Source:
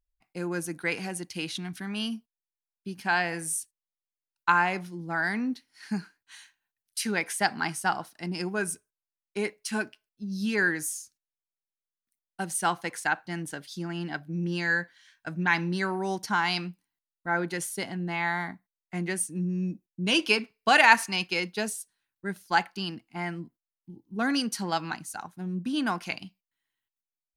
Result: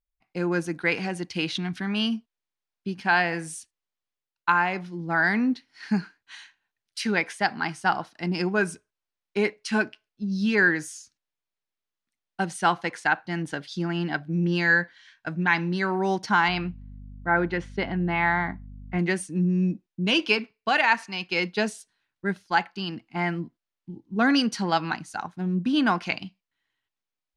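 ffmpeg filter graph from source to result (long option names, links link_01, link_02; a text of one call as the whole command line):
ffmpeg -i in.wav -filter_complex "[0:a]asettb=1/sr,asplit=3[link_01][link_02][link_03];[link_01]atrim=end=16.484[link_04];[link_02]atrim=start=16.48:end=18.99,asetpts=PTS-STARTPTS,afade=type=in:duration=0.004:curve=qsin,afade=type=out:start_time=2.506:duration=0.004:curve=qsin,lowpass=2800,aeval=exprs='val(0)+0.00447*(sin(2*PI*50*n/s)+sin(2*PI*2*50*n/s)/2+sin(2*PI*3*50*n/s)/3+sin(2*PI*4*50*n/s)/4+sin(2*PI*5*50*n/s)/5)':channel_layout=same[link_05];[link_03]atrim=start=18.986[link_06];[link_04][link_05]acrossfade=duration=0.004:curve1=hsin:curve2=qsin[link_07];[link_07][link_06]acrossfade=duration=0.004:curve1=qsin:curve2=hsin,lowpass=4600,dynaudnorm=framelen=180:gausssize=3:maxgain=12.5dB,volume=-6dB" out.wav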